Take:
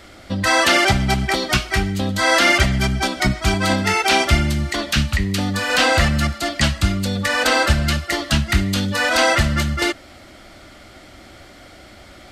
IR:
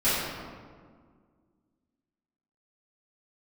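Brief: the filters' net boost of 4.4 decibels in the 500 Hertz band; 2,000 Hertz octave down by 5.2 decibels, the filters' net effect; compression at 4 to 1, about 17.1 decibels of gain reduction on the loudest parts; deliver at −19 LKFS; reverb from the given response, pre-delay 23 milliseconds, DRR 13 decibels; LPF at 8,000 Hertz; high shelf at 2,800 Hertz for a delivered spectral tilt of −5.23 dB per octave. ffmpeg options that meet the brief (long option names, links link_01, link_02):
-filter_complex "[0:a]lowpass=8000,equalizer=frequency=500:width_type=o:gain=6,equalizer=frequency=2000:width_type=o:gain=-5.5,highshelf=frequency=2800:gain=-3.5,acompressor=threshold=-32dB:ratio=4,asplit=2[link_01][link_02];[1:a]atrim=start_sample=2205,adelay=23[link_03];[link_02][link_03]afir=irnorm=-1:irlink=0,volume=-28dB[link_04];[link_01][link_04]amix=inputs=2:normalize=0,volume=14dB"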